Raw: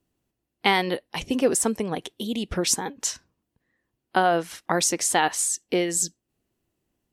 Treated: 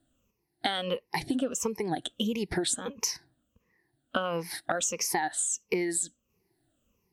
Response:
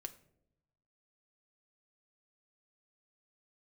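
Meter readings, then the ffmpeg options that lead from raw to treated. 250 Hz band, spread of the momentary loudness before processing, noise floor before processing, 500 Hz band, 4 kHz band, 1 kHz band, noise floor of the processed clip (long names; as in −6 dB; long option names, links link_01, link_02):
−5.0 dB, 8 LU, −81 dBFS, −6.5 dB, −5.0 dB, −8.5 dB, −79 dBFS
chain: -af "afftfilt=real='re*pow(10,18/40*sin(2*PI*(0.81*log(max(b,1)*sr/1024/100)/log(2)-(-1.5)*(pts-256)/sr)))':imag='im*pow(10,18/40*sin(2*PI*(0.81*log(max(b,1)*sr/1024/100)/log(2)-(-1.5)*(pts-256)/sr)))':win_size=1024:overlap=0.75,acompressor=threshold=-26dB:ratio=12"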